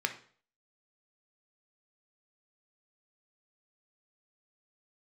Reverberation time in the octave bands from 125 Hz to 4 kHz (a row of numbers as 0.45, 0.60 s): 0.50, 0.45, 0.50, 0.45, 0.45, 0.45 s